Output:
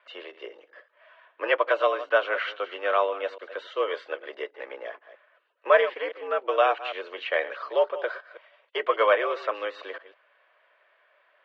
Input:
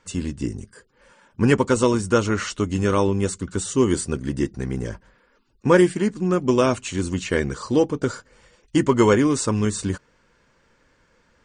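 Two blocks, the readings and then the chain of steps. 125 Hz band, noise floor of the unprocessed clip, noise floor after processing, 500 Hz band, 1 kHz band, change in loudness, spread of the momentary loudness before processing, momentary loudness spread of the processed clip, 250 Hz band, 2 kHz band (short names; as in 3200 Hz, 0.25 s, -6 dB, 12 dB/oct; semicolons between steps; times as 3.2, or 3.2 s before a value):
under -40 dB, -62 dBFS, -66 dBFS, -3.5 dB, +0.5 dB, -4.5 dB, 12 LU, 19 LU, -26.0 dB, +1.5 dB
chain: reverse delay 0.161 s, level -14 dB; mistuned SSB +93 Hz 460–3300 Hz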